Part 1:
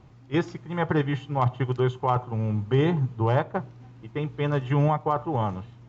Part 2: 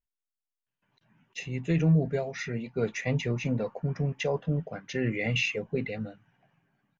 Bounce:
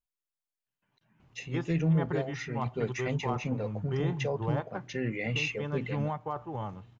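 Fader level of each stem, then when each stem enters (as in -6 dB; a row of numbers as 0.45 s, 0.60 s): -10.5 dB, -3.5 dB; 1.20 s, 0.00 s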